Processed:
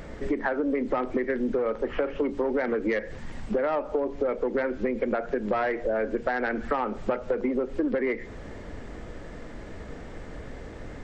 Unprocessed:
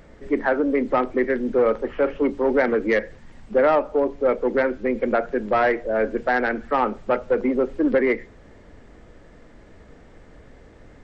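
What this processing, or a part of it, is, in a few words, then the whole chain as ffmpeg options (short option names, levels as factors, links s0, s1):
serial compression, peaks first: -af "acompressor=threshold=0.0501:ratio=5,acompressor=threshold=0.0224:ratio=2.5,volume=2.37"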